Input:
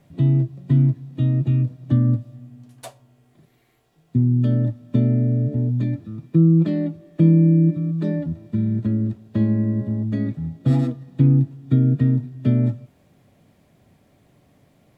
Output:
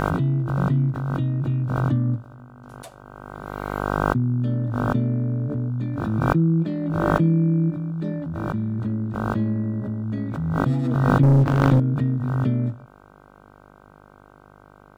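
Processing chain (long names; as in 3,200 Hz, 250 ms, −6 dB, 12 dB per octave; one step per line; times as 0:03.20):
hum with harmonics 50 Hz, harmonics 31, −48 dBFS −1 dB per octave
0:11.23–0:11.80: leveller curve on the samples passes 3
background raised ahead of every attack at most 23 dB per second
level −5 dB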